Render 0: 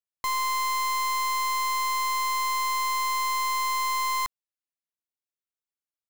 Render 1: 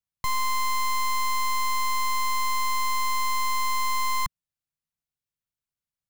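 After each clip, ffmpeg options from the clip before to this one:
ffmpeg -i in.wav -af "lowshelf=frequency=220:width_type=q:width=1.5:gain=11.5" out.wav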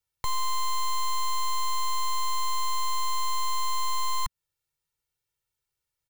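ffmpeg -i in.wav -af "aecho=1:1:2.2:0.98,alimiter=limit=-24dB:level=0:latency=1:release=167,acrusher=bits=7:mode=log:mix=0:aa=0.000001,volume=3.5dB" out.wav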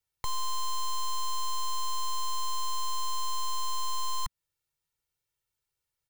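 ffmpeg -i in.wav -af "asoftclip=type=tanh:threshold=-22dB,volume=-1dB" out.wav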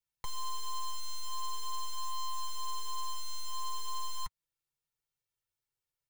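ffmpeg -i in.wav -af "flanger=delay=5.8:depth=2.4:regen=-27:speed=0.45:shape=sinusoidal,volume=-2.5dB" out.wav

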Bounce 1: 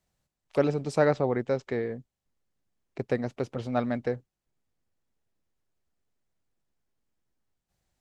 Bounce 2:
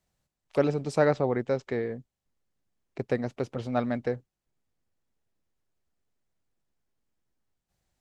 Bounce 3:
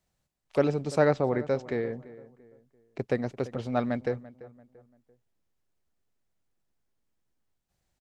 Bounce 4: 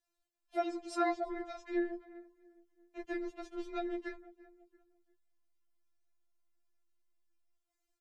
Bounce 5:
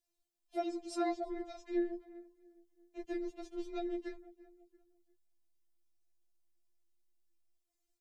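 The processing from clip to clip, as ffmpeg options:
ffmpeg -i in.wav -af anull out.wav
ffmpeg -i in.wav -filter_complex "[0:a]asplit=2[link_01][link_02];[link_02]adelay=340,lowpass=frequency=1900:poles=1,volume=-17.5dB,asplit=2[link_03][link_04];[link_04]adelay=340,lowpass=frequency=1900:poles=1,volume=0.38,asplit=2[link_05][link_06];[link_06]adelay=340,lowpass=frequency=1900:poles=1,volume=0.38[link_07];[link_01][link_03][link_05][link_07]amix=inputs=4:normalize=0" out.wav
ffmpeg -i in.wav -af "tremolo=f=110:d=0.889,lowshelf=frequency=390:gain=-3,afftfilt=real='re*4*eq(mod(b,16),0)':imag='im*4*eq(mod(b,16),0)':win_size=2048:overlap=0.75" out.wav
ffmpeg -i in.wav -af "equalizer=frequency=1400:width_type=o:width=1.7:gain=-11.5,volume=1.5dB" out.wav

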